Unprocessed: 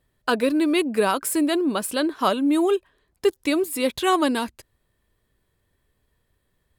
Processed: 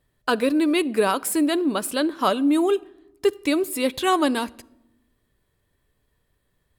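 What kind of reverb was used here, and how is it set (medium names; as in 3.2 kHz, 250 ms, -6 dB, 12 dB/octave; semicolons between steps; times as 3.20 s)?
simulated room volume 3000 m³, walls furnished, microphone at 0.35 m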